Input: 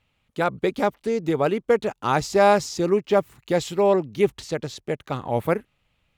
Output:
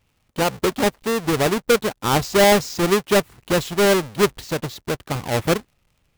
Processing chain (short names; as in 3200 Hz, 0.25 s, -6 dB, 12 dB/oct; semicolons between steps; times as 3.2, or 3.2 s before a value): half-waves squared off; crackle 34/s -45 dBFS; gain -1.5 dB